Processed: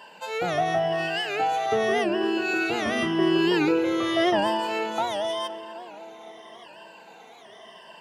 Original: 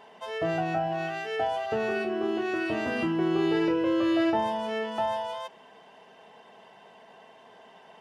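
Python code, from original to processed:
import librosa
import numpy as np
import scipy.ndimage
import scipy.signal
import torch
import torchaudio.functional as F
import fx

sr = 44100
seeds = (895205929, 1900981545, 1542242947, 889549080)

p1 = fx.spec_ripple(x, sr, per_octave=1.3, drift_hz=-0.88, depth_db=14)
p2 = scipy.signal.sosfilt(scipy.signal.butter(2, 89.0, 'highpass', fs=sr, output='sos'), p1)
p3 = fx.high_shelf(p2, sr, hz=2200.0, db=9.5)
p4 = p3 + fx.echo_tape(p3, sr, ms=258, feedback_pct=78, wet_db=-12, lp_hz=1800.0, drive_db=8.0, wow_cents=8, dry=0)
y = fx.record_warp(p4, sr, rpm=78.0, depth_cents=160.0)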